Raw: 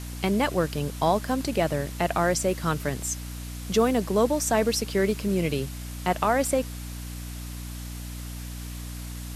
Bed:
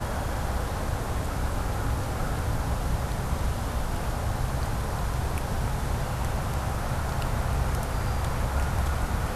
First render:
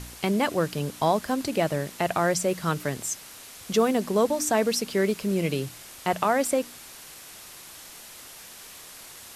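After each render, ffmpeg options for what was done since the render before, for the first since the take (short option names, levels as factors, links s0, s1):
-af "bandreject=f=60:t=h:w=4,bandreject=f=120:t=h:w=4,bandreject=f=180:t=h:w=4,bandreject=f=240:t=h:w=4,bandreject=f=300:t=h:w=4"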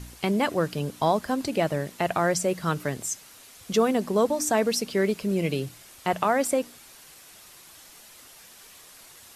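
-af "afftdn=nr=6:nf=-45"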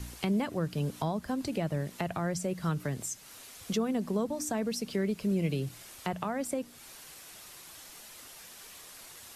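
-filter_complex "[0:a]acrossover=split=220[s0][s1];[s1]acompressor=threshold=0.0158:ratio=3[s2];[s0][s2]amix=inputs=2:normalize=0"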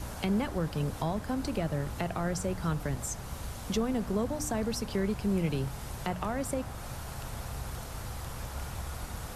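-filter_complex "[1:a]volume=0.251[s0];[0:a][s0]amix=inputs=2:normalize=0"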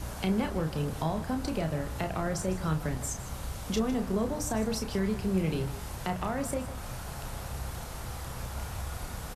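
-filter_complex "[0:a]asplit=2[s0][s1];[s1]adelay=32,volume=0.447[s2];[s0][s2]amix=inputs=2:normalize=0,aecho=1:1:155:0.188"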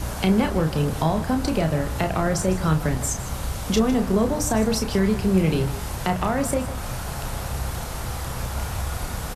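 -af "volume=2.82"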